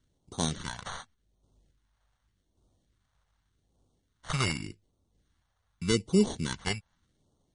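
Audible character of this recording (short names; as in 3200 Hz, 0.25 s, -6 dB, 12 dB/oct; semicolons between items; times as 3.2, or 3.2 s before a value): random-step tremolo; aliases and images of a low sample rate 2500 Hz, jitter 0%; phasing stages 2, 0.85 Hz, lowest notch 290–1700 Hz; MP3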